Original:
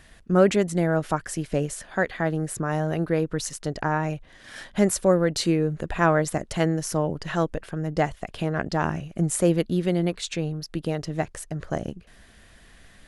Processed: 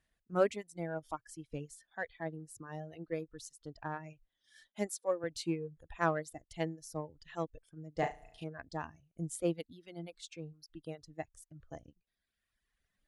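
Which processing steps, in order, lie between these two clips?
4.67–5.24 HPF 210 Hz 12 dB/oct; spectral noise reduction 10 dB; 7.99–8.44 flutter echo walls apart 6.1 m, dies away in 0.92 s; reverb removal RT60 1.4 s; added harmonics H 3 -30 dB, 7 -42 dB, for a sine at -7.5 dBFS; upward expander 1.5:1, over -33 dBFS; gain -7.5 dB

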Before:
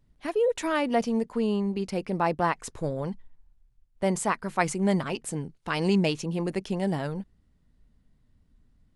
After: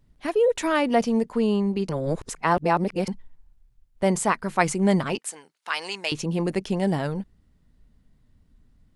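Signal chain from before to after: 1.89–3.08 reverse; 5.18–6.12 HPF 1000 Hz 12 dB/oct; gain +4 dB

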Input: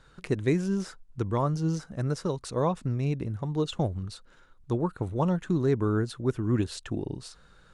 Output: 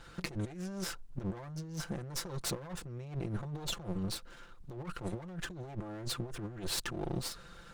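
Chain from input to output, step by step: minimum comb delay 5.8 ms; dynamic EQ 220 Hz, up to -6 dB, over -43 dBFS, Q 2.5; negative-ratio compressor -39 dBFS, ratio -1; gain -1 dB

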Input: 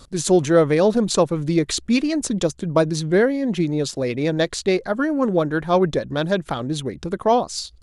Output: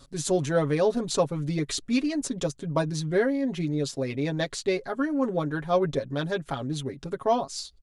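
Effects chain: comb 7.3 ms, depth 74%; gain -8.5 dB

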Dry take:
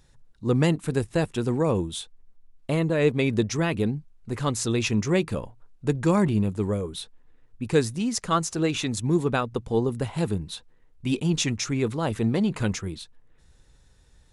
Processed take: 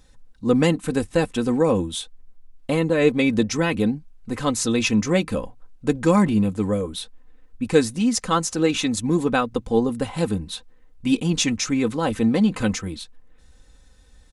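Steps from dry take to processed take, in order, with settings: comb 3.9 ms, depth 60%; gain +3 dB

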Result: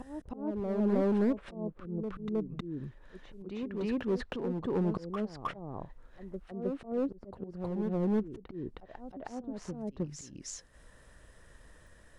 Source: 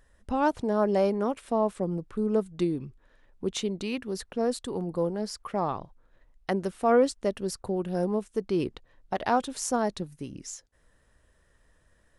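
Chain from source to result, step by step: treble ducked by the level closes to 370 Hz, closed at -24 dBFS; auto swell 0.609 s; in parallel at -5 dB: wavefolder -33.5 dBFS; on the sum: reverse echo 0.314 s -5.5 dB; gain +3 dB

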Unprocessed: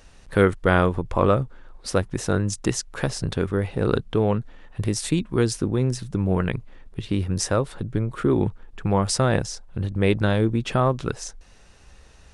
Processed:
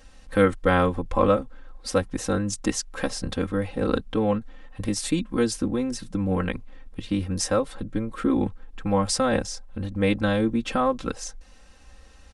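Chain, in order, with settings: comb 3.8 ms, depth 92%; gain -3.5 dB

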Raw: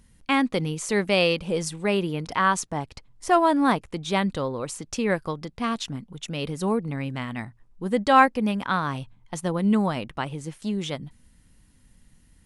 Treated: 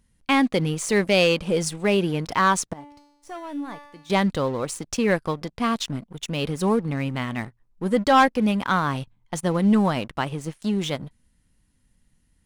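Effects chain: sample leveller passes 2; 2.73–4.1 resonator 290 Hz, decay 0.94 s, mix 90%; gain -4 dB

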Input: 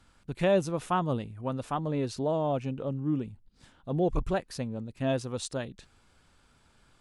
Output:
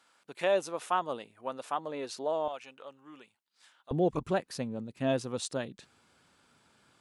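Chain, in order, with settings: HPF 510 Hz 12 dB/oct, from 2.48 s 1100 Hz, from 3.91 s 150 Hz

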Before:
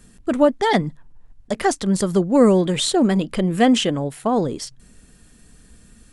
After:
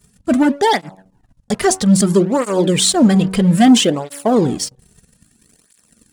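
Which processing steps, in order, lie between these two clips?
tone controls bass +4 dB, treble +6 dB; de-hum 94.5 Hz, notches 12; sample leveller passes 2; in parallel at -8 dB: crossover distortion -27.5 dBFS; on the sum: tape flanging out of phase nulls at 0.61 Hz, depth 3.8 ms; gain -2.5 dB

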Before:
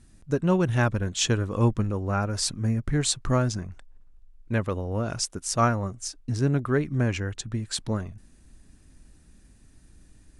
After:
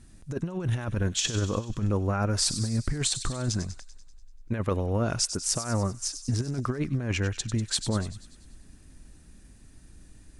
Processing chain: negative-ratio compressor -26 dBFS, ratio -0.5; on a send: thin delay 97 ms, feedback 60%, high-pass 3200 Hz, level -9 dB

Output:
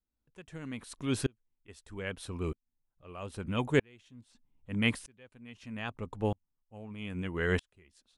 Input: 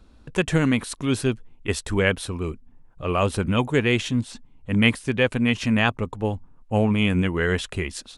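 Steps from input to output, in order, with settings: dB-ramp tremolo swelling 0.79 Hz, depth 36 dB; gain -4 dB

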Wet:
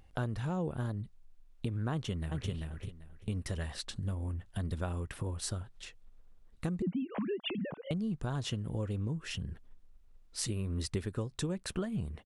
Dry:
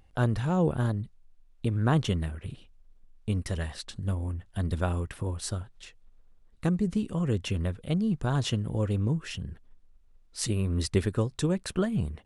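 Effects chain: 6.82–7.91 sine-wave speech; compressor 3:1, threshold -34 dBFS, peak gain reduction 11.5 dB; 1.92–2.51 echo throw 0.39 s, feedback 20%, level -2.5 dB

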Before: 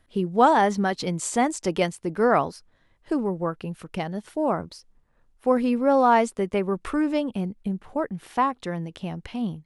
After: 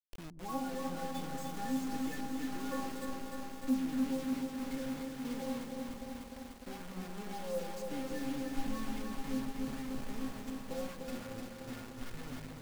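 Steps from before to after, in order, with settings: speed glide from 88% -> 65%; de-esser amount 65%; thirty-one-band EQ 125 Hz -5 dB, 630 Hz -7 dB, 1600 Hz +5 dB, 8000 Hz +9 dB; compressor 6:1, threshold -23 dBFS, peak gain reduction 9.5 dB; tilt -3 dB/oct; metallic resonator 260 Hz, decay 0.44 s, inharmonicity 0.008; requantised 8-bit, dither none; on a send: repeats that get brighter 0.121 s, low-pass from 200 Hz, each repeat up 1 oct, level -3 dB; on the sum: lo-fi delay 0.3 s, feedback 80%, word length 9-bit, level -4.5 dB

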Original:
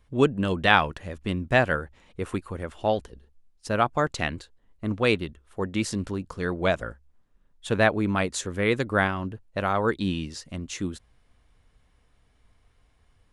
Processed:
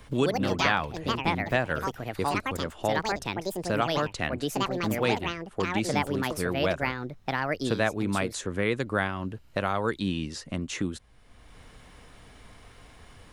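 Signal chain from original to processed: echoes that change speed 0.115 s, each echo +5 st, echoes 2; three-band squash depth 70%; gain -4 dB

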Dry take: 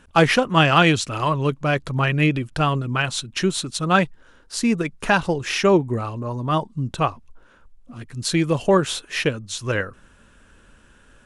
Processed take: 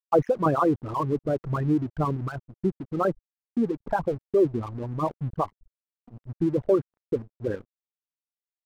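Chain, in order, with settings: formant sharpening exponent 3; LPF 1100 Hz 24 dB/oct; gate -44 dBFS, range -6 dB; tempo 1.3×; crossover distortion -41 dBFS; gain -3.5 dB

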